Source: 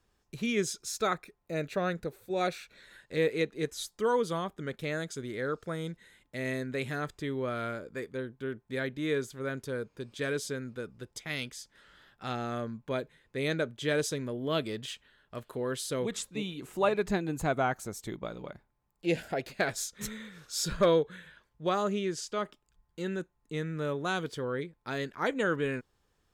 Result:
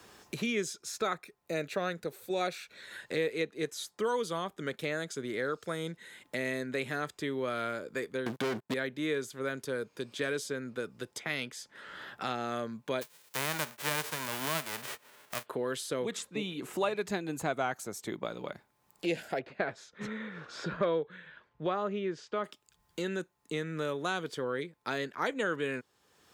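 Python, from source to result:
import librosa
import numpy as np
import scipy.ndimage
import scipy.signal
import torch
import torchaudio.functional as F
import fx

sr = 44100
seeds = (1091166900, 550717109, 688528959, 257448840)

y = fx.leveller(x, sr, passes=5, at=(8.26, 8.74))
y = fx.envelope_flatten(y, sr, power=0.1, at=(13.01, 15.45), fade=0.02)
y = fx.lowpass(y, sr, hz=1600.0, slope=12, at=(19.39, 22.44))
y = scipy.signal.sosfilt(scipy.signal.butter(2, 80.0, 'highpass', fs=sr, output='sos'), y)
y = fx.low_shelf(y, sr, hz=160.0, db=-11.0)
y = fx.band_squash(y, sr, depth_pct=70)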